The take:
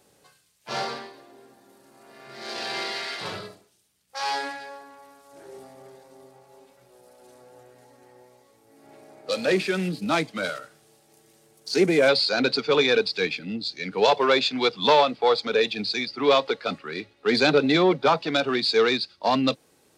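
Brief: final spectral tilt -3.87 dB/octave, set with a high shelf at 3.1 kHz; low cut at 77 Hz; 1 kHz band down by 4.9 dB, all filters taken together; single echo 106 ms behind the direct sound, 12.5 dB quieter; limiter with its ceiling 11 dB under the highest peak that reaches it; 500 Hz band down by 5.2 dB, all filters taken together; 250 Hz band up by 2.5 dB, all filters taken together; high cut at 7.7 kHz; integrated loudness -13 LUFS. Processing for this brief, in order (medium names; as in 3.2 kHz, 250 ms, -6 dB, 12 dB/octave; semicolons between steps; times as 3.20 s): high-pass 77 Hz; low-pass 7.7 kHz; peaking EQ 250 Hz +6 dB; peaking EQ 500 Hz -7.5 dB; peaking EQ 1 kHz -5 dB; treble shelf 3.1 kHz +7 dB; peak limiter -17.5 dBFS; delay 106 ms -12.5 dB; trim +14 dB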